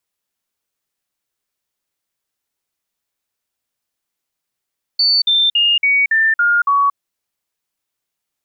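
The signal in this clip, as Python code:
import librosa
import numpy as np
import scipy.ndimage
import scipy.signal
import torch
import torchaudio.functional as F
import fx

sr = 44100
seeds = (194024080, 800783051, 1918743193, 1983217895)

y = fx.stepped_sweep(sr, from_hz=4500.0, direction='down', per_octave=3, tones=7, dwell_s=0.23, gap_s=0.05, level_db=-10.5)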